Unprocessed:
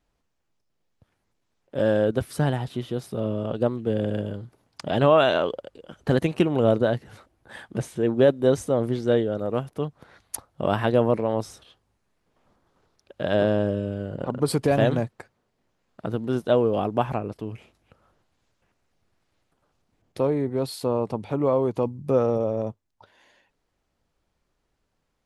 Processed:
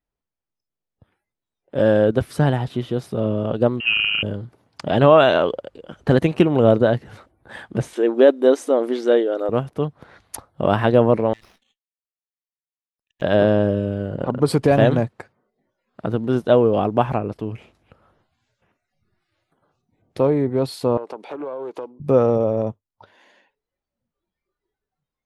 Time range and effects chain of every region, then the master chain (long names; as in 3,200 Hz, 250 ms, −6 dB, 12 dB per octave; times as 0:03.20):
0:03.80–0:04.23: converter with a step at zero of −38 dBFS + voice inversion scrambler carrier 3,000 Hz
0:07.93–0:09.49: linear-phase brick-wall high-pass 240 Hz + one half of a high-frequency compander encoder only
0:11.33–0:13.22: power curve on the samples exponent 1.4 + linear-phase brick-wall high-pass 1,700 Hz + windowed peak hold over 5 samples
0:20.97–0:22.00: high-pass filter 340 Hz 24 dB per octave + downward compressor 8 to 1, threshold −32 dBFS + highs frequency-modulated by the lows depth 0.19 ms
whole clip: noise reduction from a noise print of the clip's start 18 dB; high-shelf EQ 5,100 Hz −8 dB; level +5.5 dB